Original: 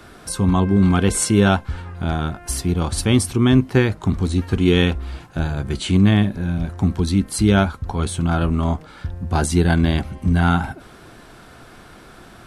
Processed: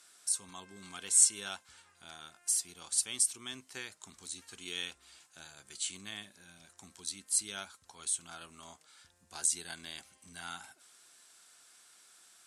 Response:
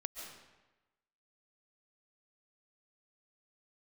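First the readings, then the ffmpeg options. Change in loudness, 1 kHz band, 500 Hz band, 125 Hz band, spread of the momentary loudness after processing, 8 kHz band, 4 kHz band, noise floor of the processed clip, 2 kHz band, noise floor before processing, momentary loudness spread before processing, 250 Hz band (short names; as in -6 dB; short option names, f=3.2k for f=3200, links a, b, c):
-13.5 dB, -25.0 dB, -31.5 dB, under -40 dB, 22 LU, -1.5 dB, -12.0 dB, -68 dBFS, -19.5 dB, -44 dBFS, 10 LU, -37.5 dB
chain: -af "bandpass=f=7.9k:t=q:w=2:csg=0"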